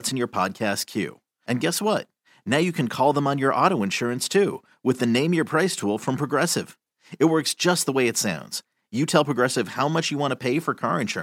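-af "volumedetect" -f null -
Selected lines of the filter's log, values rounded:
mean_volume: -23.6 dB
max_volume: -2.5 dB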